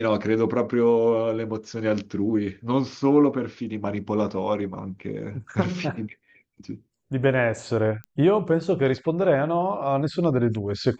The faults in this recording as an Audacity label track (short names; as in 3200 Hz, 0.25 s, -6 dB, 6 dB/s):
8.040000	8.040000	pop -23 dBFS